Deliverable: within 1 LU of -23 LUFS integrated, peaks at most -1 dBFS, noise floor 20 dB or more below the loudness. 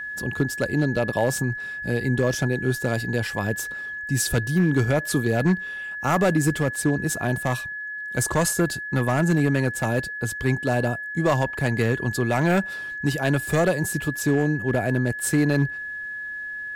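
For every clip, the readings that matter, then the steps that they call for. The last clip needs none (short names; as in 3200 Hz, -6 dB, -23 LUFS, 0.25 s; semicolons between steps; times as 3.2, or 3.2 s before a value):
clipped 0.9%; flat tops at -13.0 dBFS; steady tone 1700 Hz; tone level -30 dBFS; loudness -24.0 LUFS; peak -13.0 dBFS; loudness target -23.0 LUFS
-> clip repair -13 dBFS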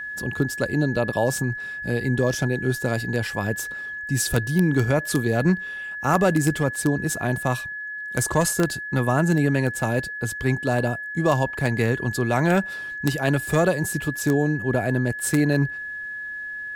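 clipped 0.0%; steady tone 1700 Hz; tone level -30 dBFS
-> notch 1700 Hz, Q 30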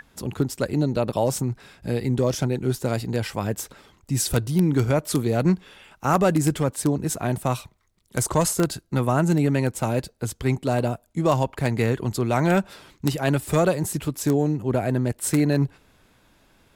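steady tone none; loudness -24.0 LUFS; peak -3.5 dBFS; loudness target -23.0 LUFS
-> gain +1 dB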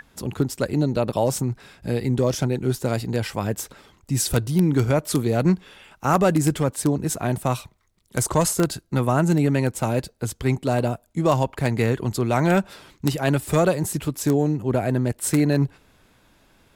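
loudness -23.0 LUFS; peak -2.5 dBFS; noise floor -60 dBFS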